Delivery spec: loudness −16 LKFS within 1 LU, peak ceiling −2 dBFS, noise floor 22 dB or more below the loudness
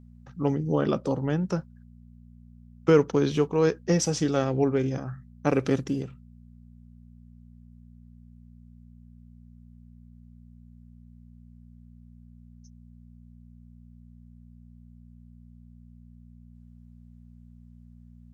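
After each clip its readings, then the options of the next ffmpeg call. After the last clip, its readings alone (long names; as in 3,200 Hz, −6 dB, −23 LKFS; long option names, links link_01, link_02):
mains hum 60 Hz; hum harmonics up to 240 Hz; level of the hum −48 dBFS; integrated loudness −26.0 LKFS; sample peak −8.0 dBFS; target loudness −16.0 LKFS
→ -af "bandreject=frequency=60:width_type=h:width=4,bandreject=frequency=120:width_type=h:width=4,bandreject=frequency=180:width_type=h:width=4,bandreject=frequency=240:width_type=h:width=4"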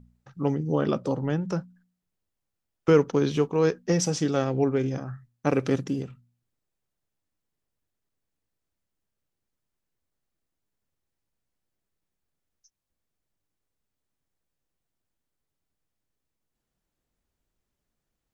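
mains hum none found; integrated loudness −26.0 LKFS; sample peak −8.0 dBFS; target loudness −16.0 LKFS
→ -af "volume=10dB,alimiter=limit=-2dB:level=0:latency=1"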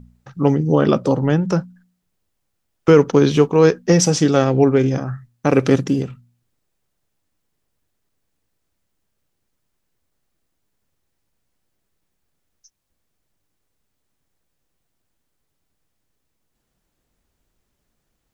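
integrated loudness −16.5 LKFS; sample peak −2.0 dBFS; background noise floor −74 dBFS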